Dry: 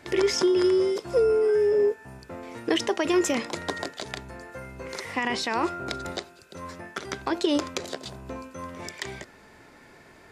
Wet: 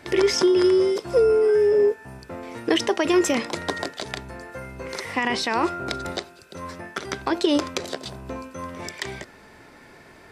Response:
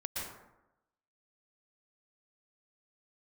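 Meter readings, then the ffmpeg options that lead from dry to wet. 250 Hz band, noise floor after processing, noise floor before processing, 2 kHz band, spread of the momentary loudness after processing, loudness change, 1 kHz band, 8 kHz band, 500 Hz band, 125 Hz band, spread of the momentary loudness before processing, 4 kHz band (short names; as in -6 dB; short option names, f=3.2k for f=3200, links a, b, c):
+3.5 dB, -49 dBFS, -52 dBFS, +3.5 dB, 19 LU, +3.5 dB, +3.5 dB, +2.5 dB, +3.5 dB, +3.5 dB, 19 LU, +3.5 dB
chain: -af "bandreject=f=6.9k:w=14,volume=3.5dB"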